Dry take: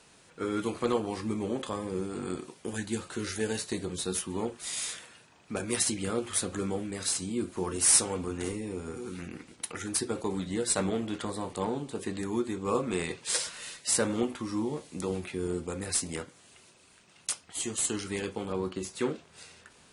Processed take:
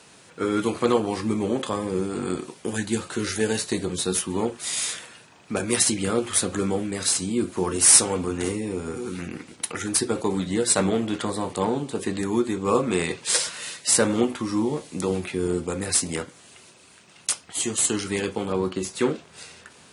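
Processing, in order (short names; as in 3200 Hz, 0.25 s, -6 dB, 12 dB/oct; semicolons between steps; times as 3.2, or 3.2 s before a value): HPF 78 Hz; gain +7.5 dB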